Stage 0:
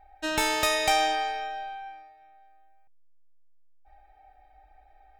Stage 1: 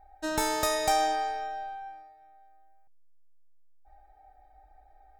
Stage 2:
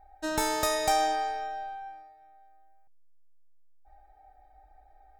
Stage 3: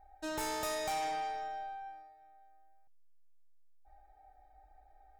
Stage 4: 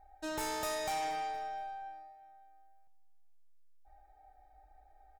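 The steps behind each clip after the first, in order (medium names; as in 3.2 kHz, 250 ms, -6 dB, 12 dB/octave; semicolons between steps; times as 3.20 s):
peaking EQ 2.7 kHz -13 dB 1 oct
no audible change
saturation -28.5 dBFS, distortion -9 dB; trim -4 dB
feedback delay 235 ms, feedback 47%, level -21 dB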